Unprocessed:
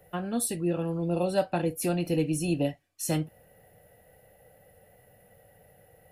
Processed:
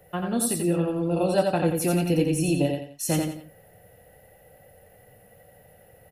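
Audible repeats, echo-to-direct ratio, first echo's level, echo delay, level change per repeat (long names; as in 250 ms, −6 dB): 3, −3.5 dB, −4.0 dB, 87 ms, −9.0 dB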